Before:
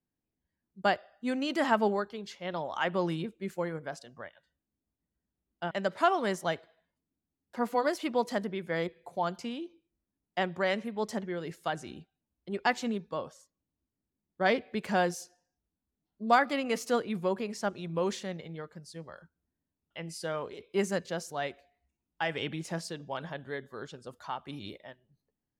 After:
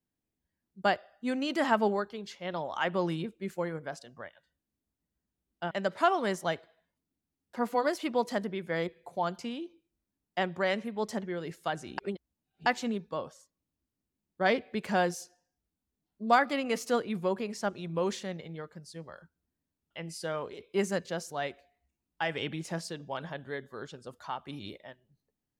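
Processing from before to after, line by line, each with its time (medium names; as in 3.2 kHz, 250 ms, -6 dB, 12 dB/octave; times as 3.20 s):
11.98–12.66 s: reverse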